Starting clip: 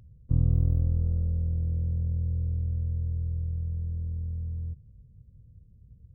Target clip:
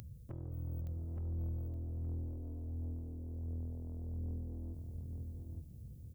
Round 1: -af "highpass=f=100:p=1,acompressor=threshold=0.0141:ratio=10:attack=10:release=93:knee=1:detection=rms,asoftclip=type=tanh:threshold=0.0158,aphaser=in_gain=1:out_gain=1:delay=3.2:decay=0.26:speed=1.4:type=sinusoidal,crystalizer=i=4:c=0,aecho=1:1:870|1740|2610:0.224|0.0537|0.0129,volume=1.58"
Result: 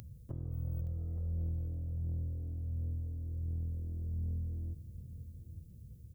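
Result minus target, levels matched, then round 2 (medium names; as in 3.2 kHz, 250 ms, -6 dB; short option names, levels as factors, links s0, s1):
echo-to-direct -8 dB; saturation: distortion -7 dB
-af "highpass=f=100:p=1,acompressor=threshold=0.0141:ratio=10:attack=10:release=93:knee=1:detection=rms,asoftclip=type=tanh:threshold=0.0075,aphaser=in_gain=1:out_gain=1:delay=3.2:decay=0.26:speed=1.4:type=sinusoidal,crystalizer=i=4:c=0,aecho=1:1:870|1740|2610:0.562|0.135|0.0324,volume=1.58"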